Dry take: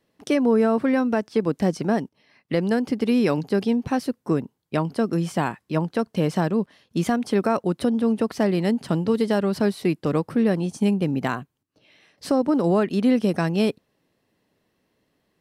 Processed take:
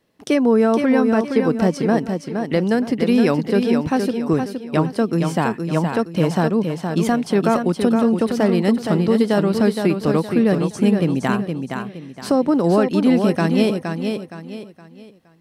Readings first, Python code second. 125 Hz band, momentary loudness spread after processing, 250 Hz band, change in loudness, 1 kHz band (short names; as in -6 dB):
+5.0 dB, 8 LU, +4.5 dB, +4.5 dB, +4.5 dB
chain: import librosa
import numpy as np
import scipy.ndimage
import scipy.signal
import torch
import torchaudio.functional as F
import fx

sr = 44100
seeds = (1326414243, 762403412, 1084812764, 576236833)

y = fx.echo_feedback(x, sr, ms=467, feedback_pct=34, wet_db=-6.0)
y = y * librosa.db_to_amplitude(3.5)